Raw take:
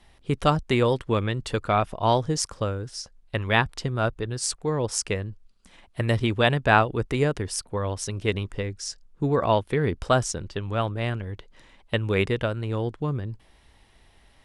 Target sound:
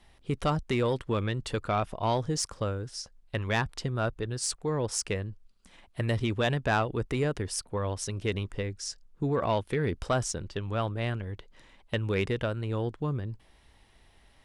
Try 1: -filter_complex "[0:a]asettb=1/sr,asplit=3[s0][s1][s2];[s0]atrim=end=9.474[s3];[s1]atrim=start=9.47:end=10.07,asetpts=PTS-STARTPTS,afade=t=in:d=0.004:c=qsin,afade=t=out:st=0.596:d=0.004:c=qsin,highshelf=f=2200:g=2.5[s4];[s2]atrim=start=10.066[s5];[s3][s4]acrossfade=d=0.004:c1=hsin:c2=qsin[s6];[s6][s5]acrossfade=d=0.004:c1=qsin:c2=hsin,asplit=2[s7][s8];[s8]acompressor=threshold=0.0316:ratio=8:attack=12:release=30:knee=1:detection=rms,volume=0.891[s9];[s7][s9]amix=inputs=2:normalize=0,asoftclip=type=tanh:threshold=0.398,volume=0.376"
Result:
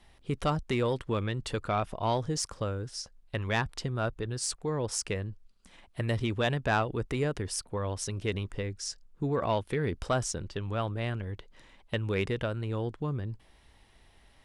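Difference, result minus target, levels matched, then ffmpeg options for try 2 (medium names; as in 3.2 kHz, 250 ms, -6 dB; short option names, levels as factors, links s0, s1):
compression: peak gain reduction +5.5 dB
-filter_complex "[0:a]asettb=1/sr,asplit=3[s0][s1][s2];[s0]atrim=end=9.474[s3];[s1]atrim=start=9.47:end=10.07,asetpts=PTS-STARTPTS,afade=t=in:d=0.004:c=qsin,afade=t=out:st=0.596:d=0.004:c=qsin,highshelf=f=2200:g=2.5[s4];[s2]atrim=start=10.066[s5];[s3][s4]acrossfade=d=0.004:c1=hsin:c2=qsin[s6];[s6][s5]acrossfade=d=0.004:c1=qsin:c2=hsin,asplit=2[s7][s8];[s8]acompressor=threshold=0.0668:ratio=8:attack=12:release=30:knee=1:detection=rms,volume=0.891[s9];[s7][s9]amix=inputs=2:normalize=0,asoftclip=type=tanh:threshold=0.398,volume=0.376"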